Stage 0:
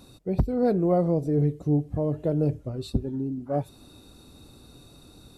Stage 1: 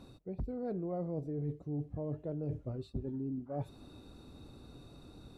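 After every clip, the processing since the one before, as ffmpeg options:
-af "lowpass=f=2.1k:p=1,areverse,acompressor=threshold=-33dB:ratio=8,areverse,volume=-2dB"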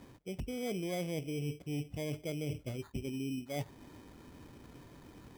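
-af "lowshelf=f=75:g=-7.5,acrusher=samples=16:mix=1:aa=0.000001,volume=1dB"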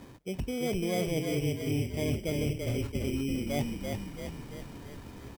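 -filter_complex "[0:a]asplit=9[a][b][c][d][e][f][g][h][i];[b]adelay=337,afreqshift=-34,volume=-4dB[j];[c]adelay=674,afreqshift=-68,volume=-8.6dB[k];[d]adelay=1011,afreqshift=-102,volume=-13.2dB[l];[e]adelay=1348,afreqshift=-136,volume=-17.7dB[m];[f]adelay=1685,afreqshift=-170,volume=-22.3dB[n];[g]adelay=2022,afreqshift=-204,volume=-26.9dB[o];[h]adelay=2359,afreqshift=-238,volume=-31.5dB[p];[i]adelay=2696,afreqshift=-272,volume=-36.1dB[q];[a][j][k][l][m][n][o][p][q]amix=inputs=9:normalize=0,volume=5.5dB"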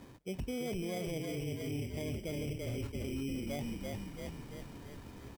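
-af "alimiter=level_in=2.5dB:limit=-24dB:level=0:latency=1:release=16,volume=-2.5dB,volume=-4dB"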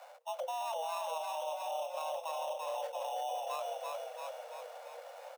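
-af "afreqshift=470"

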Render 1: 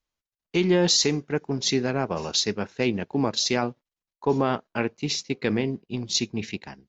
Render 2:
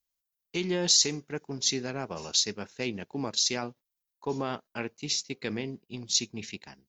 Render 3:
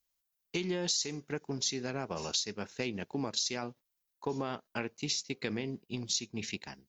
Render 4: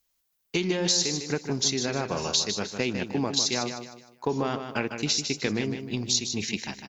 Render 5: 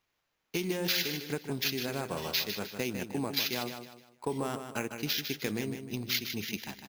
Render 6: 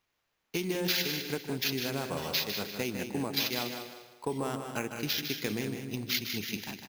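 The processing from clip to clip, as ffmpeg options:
-af "aemphasis=mode=production:type=75fm,volume=-8.5dB"
-af "acompressor=threshold=-34dB:ratio=4,volume=2.5dB"
-af "aecho=1:1:153|306|459|612:0.398|0.143|0.0516|0.0186,volume=7.5dB"
-af "acrusher=samples=5:mix=1:aa=0.000001,volume=-6dB"
-af "aecho=1:1:197|394|591:0.355|0.0993|0.0278"

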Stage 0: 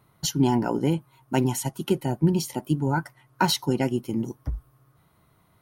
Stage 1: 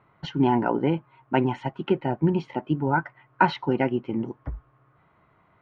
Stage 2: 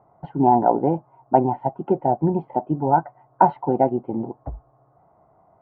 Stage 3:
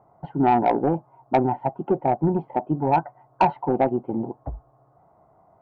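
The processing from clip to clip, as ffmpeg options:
-af "lowpass=f=2.5k:w=0.5412,lowpass=f=2.5k:w=1.3066,lowshelf=f=290:g=-9.5,volume=5dB"
-af "lowpass=f=740:t=q:w=4.9"
-af "asoftclip=type=tanh:threshold=-10dB"

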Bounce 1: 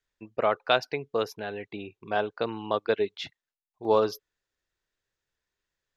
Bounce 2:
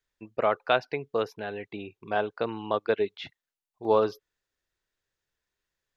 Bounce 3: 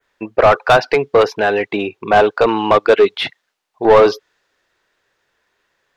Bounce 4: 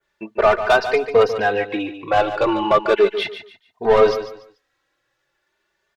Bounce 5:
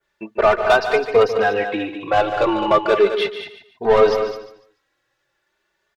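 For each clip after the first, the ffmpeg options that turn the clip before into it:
-filter_complex "[0:a]acrossover=split=3600[a][b];[b]acompressor=threshold=-53dB:ratio=4:attack=1:release=60[c];[a][c]amix=inputs=2:normalize=0"
-filter_complex "[0:a]acontrast=35,adynamicequalizer=threshold=0.00794:dfrequency=5000:dqfactor=0.81:tfrequency=5000:tqfactor=0.81:attack=5:release=100:ratio=0.375:range=3:mode=boostabove:tftype=bell,asplit=2[a][b];[b]highpass=f=720:p=1,volume=23dB,asoftclip=type=tanh:threshold=-3.5dB[c];[a][c]amix=inputs=2:normalize=0,lowpass=f=1.2k:p=1,volume=-6dB,volume=4dB"
-filter_complex "[0:a]aphaser=in_gain=1:out_gain=1:delay=3.4:decay=0.22:speed=0.81:type=triangular,asplit=2[a][b];[b]aecho=0:1:145|290|435:0.282|0.0761|0.0205[c];[a][c]amix=inputs=2:normalize=0,asplit=2[d][e];[e]adelay=3,afreqshift=0.36[f];[d][f]amix=inputs=2:normalize=1,volume=-2dB"
-af "aecho=1:1:208:0.335"

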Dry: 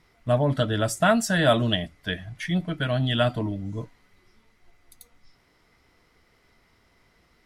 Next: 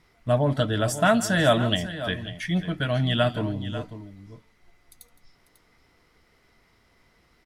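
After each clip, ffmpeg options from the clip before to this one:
-af "aecho=1:1:164|545:0.133|0.224"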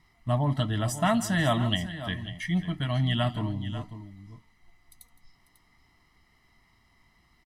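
-af "aecho=1:1:1:0.73,volume=-5dB"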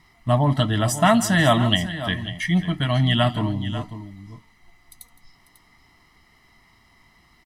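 -af "lowshelf=f=140:g=-4.5,volume=8.5dB"

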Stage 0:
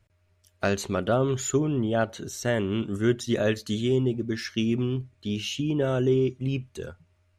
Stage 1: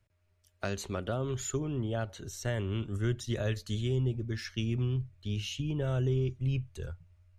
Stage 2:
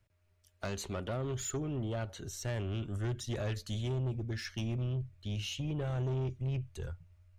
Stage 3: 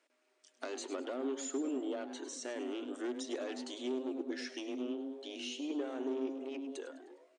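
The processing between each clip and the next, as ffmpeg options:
-filter_complex "[0:a]asubboost=boost=10:cutoff=79,acrossover=split=220|3000[a][b][c];[b]acompressor=threshold=-25dB:ratio=6[d];[a][d][c]amix=inputs=3:normalize=0,volume=-6.5dB"
-af "asoftclip=type=tanh:threshold=-30dB"
-filter_complex "[0:a]asplit=5[a][b][c][d][e];[b]adelay=102,afreqshift=140,volume=-13.5dB[f];[c]adelay=204,afreqshift=280,volume=-21.2dB[g];[d]adelay=306,afreqshift=420,volume=-29dB[h];[e]adelay=408,afreqshift=560,volume=-36.7dB[i];[a][f][g][h][i]amix=inputs=5:normalize=0,acrossover=split=350[j][k];[k]acompressor=threshold=-55dB:ratio=2[l];[j][l]amix=inputs=2:normalize=0,afftfilt=real='re*between(b*sr/4096,240,9500)':imag='im*between(b*sr/4096,240,9500)':win_size=4096:overlap=0.75,volume=6dB"

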